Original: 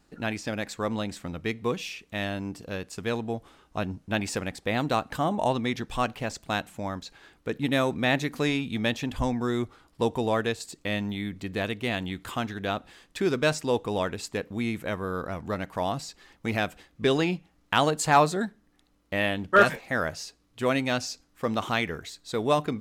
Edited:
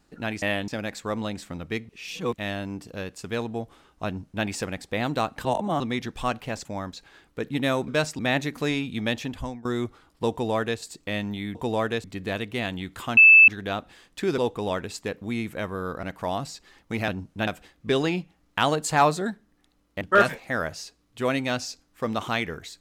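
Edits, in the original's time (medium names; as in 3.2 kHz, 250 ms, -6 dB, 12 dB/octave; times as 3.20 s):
1.63–2.08 s: reverse
3.80–4.19 s: copy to 16.62 s
5.19–5.54 s: reverse
6.39–6.74 s: delete
9.00–9.43 s: fade out, to -18.5 dB
10.09–10.58 s: copy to 11.33 s
12.46 s: add tone 2.63 kHz -8.5 dBFS 0.31 s
13.36–13.67 s: move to 7.97 s
15.32–15.57 s: delete
19.16–19.42 s: move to 0.42 s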